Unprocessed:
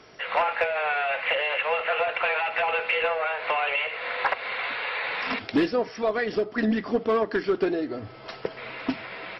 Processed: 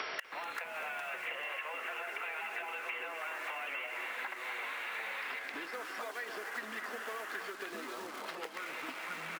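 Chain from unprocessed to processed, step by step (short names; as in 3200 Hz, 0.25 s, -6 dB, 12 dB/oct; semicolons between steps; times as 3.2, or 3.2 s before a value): tone controls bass -10 dB, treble -13 dB; feedback echo 0.259 s, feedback 40%, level -13 dB; in parallel at -10.5 dB: bit-crush 6-bit; on the sum: flipped gate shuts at -30 dBFS, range -32 dB; compressor 3:1, threshold -56 dBFS, peak gain reduction 11 dB; echoes that change speed 0.325 s, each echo -5 st, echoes 3, each echo -6 dB; tilt shelf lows -9.5 dB, about 640 Hz; on a send: echo 0.246 s -14 dB; on the sum: three-band squash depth 100%; gain +13 dB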